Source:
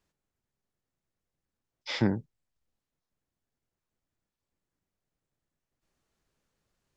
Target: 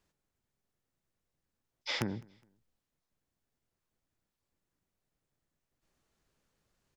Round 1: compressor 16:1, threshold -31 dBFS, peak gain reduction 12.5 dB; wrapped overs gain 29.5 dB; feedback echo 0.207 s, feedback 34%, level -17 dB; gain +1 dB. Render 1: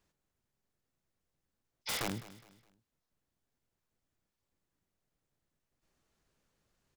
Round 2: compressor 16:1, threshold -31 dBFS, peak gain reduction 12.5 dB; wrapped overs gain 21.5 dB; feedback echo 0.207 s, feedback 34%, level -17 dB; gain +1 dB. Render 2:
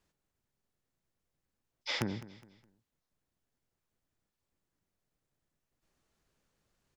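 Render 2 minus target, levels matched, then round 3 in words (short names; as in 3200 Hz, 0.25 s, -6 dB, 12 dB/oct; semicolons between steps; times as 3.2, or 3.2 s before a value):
echo-to-direct +9.5 dB
compressor 16:1, threshold -31 dBFS, peak gain reduction 12.5 dB; wrapped overs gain 21.5 dB; feedback echo 0.207 s, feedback 34%, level -26.5 dB; gain +1 dB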